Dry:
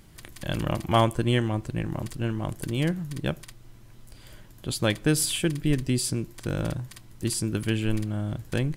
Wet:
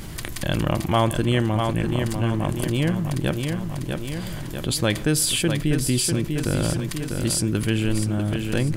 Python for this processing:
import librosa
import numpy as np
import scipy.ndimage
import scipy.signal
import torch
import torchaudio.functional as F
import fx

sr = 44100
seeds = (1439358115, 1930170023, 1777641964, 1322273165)

y = fx.echo_feedback(x, sr, ms=646, feedback_pct=43, wet_db=-9)
y = fx.env_flatten(y, sr, amount_pct=50)